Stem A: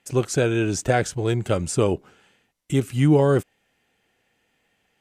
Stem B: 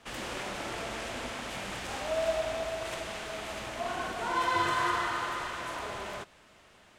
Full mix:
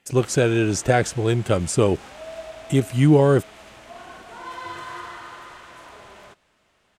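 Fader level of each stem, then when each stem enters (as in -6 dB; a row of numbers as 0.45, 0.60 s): +2.0, -6.5 dB; 0.00, 0.10 s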